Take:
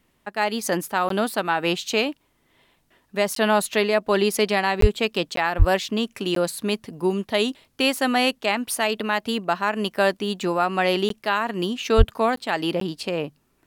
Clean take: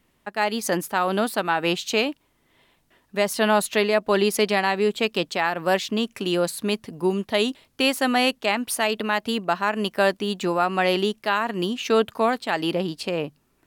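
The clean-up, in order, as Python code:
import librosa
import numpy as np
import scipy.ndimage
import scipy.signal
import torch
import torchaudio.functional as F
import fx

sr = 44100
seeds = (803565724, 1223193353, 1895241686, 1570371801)

y = fx.highpass(x, sr, hz=140.0, slope=24, at=(4.8, 4.92), fade=0.02)
y = fx.highpass(y, sr, hz=140.0, slope=24, at=(5.58, 5.7), fade=0.02)
y = fx.highpass(y, sr, hz=140.0, slope=24, at=(11.97, 12.09), fade=0.02)
y = fx.fix_interpolate(y, sr, at_s=(1.09, 3.35, 4.81, 5.36, 6.35, 11.09, 12.36, 12.8), length_ms=13.0)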